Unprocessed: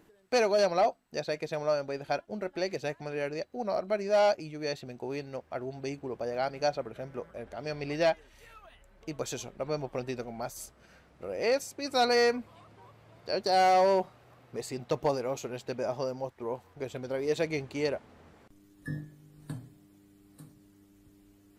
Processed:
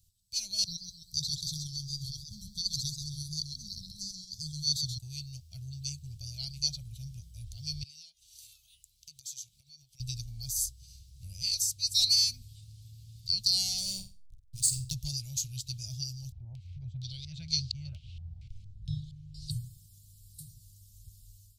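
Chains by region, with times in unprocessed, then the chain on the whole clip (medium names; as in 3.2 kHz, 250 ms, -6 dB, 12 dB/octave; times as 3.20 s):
0.64–4.98 s: compressor with a negative ratio -31 dBFS, ratio -0.5 + brick-wall FIR band-stop 320–3200 Hz + modulated delay 132 ms, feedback 40%, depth 122 cents, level -6 dB
7.83–10.00 s: high-pass 880 Hz 6 dB/octave + compression 5:1, threshold -50 dBFS
13.78–14.94 s: peaking EQ 8.9 kHz +12 dB 0.45 oct + hysteresis with a dead band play -41 dBFS + flutter echo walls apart 8 m, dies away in 0.31 s
16.32–19.51 s: upward compressor, threshold -40 dBFS + step-sequenced low-pass 4.3 Hz 750–4800 Hz
whole clip: level rider gain up to 10 dB; inverse Chebyshev band-stop 260–1900 Hz, stop band 50 dB; trim +3 dB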